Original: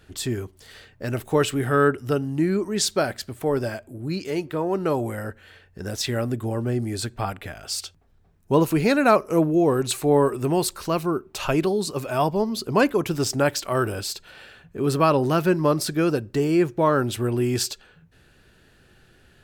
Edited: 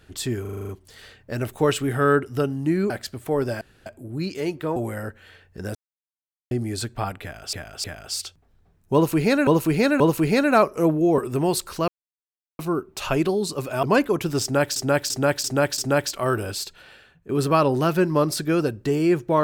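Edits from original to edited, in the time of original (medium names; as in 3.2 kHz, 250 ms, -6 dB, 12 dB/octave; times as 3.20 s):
0.41 s: stutter 0.04 s, 8 plays
2.62–3.05 s: delete
3.76 s: insert room tone 0.25 s
4.66–4.97 s: delete
5.96–6.72 s: mute
7.43–7.74 s: loop, 3 plays
8.53–9.06 s: loop, 3 plays
9.71–10.27 s: delete
10.97 s: insert silence 0.71 s
12.21–12.68 s: delete
13.27–13.61 s: loop, 5 plays
14.15–14.78 s: fade out, to -11.5 dB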